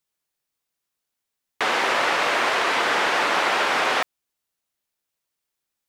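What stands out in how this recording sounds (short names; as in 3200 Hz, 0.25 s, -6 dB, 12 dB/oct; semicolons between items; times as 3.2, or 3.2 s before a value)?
noise floor -82 dBFS; spectral tilt -1.0 dB/oct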